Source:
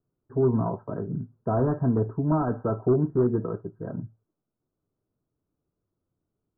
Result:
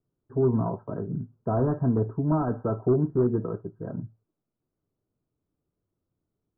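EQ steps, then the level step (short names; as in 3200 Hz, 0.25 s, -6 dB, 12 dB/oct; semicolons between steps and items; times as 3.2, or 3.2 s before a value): air absorption 340 m; 0.0 dB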